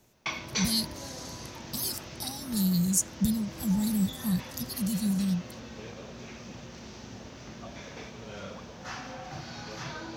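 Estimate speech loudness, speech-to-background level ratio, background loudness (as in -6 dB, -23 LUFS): -29.5 LUFS, 11.0 dB, -40.5 LUFS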